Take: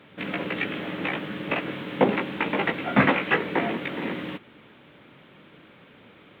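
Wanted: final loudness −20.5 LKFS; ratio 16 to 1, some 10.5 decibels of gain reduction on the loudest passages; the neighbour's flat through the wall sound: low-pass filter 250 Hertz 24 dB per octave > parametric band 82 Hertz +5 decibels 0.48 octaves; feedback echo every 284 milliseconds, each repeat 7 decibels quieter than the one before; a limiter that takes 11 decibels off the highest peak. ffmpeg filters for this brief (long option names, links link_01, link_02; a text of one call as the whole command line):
ffmpeg -i in.wav -af "acompressor=threshold=-24dB:ratio=16,alimiter=limit=-24dB:level=0:latency=1,lowpass=frequency=250:width=0.5412,lowpass=frequency=250:width=1.3066,equalizer=frequency=82:width_type=o:width=0.48:gain=5,aecho=1:1:284|568|852|1136|1420:0.447|0.201|0.0905|0.0407|0.0183,volume=20dB" out.wav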